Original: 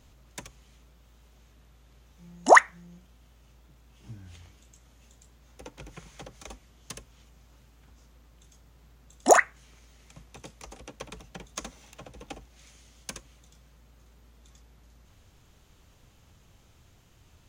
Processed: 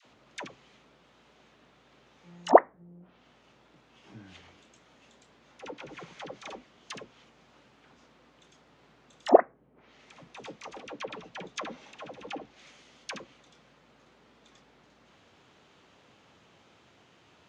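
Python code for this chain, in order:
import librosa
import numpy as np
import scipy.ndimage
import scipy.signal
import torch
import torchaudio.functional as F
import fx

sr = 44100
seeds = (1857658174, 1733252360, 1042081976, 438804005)

y = fx.bandpass_edges(x, sr, low_hz=250.0, high_hz=3800.0)
y = fx.dispersion(y, sr, late='lows', ms=59.0, hz=680.0)
y = fx.env_lowpass_down(y, sr, base_hz=500.0, full_db=-31.5)
y = F.gain(torch.from_numpy(y), 5.5).numpy()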